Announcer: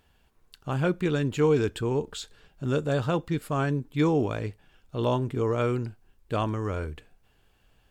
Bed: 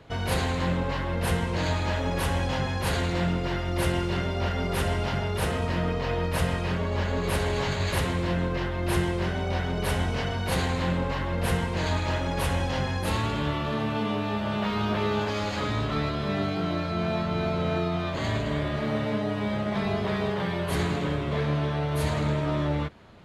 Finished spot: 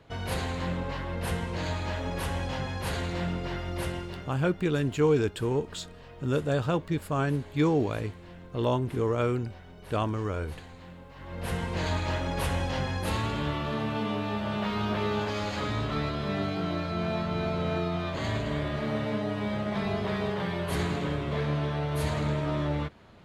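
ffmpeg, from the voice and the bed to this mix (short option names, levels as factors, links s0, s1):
-filter_complex "[0:a]adelay=3600,volume=0.891[s0];[1:a]volume=4.47,afade=t=out:st=3.68:d=0.73:silence=0.16788,afade=t=in:st=11.14:d=0.62:silence=0.125893[s1];[s0][s1]amix=inputs=2:normalize=0"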